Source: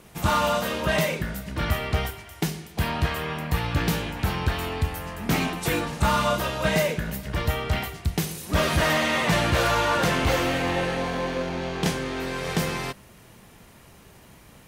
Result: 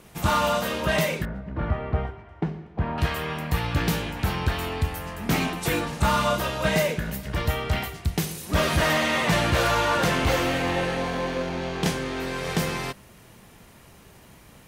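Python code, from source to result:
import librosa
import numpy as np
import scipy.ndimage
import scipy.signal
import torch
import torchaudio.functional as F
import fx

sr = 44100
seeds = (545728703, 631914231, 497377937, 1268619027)

y = fx.lowpass(x, sr, hz=1200.0, slope=12, at=(1.25, 2.98))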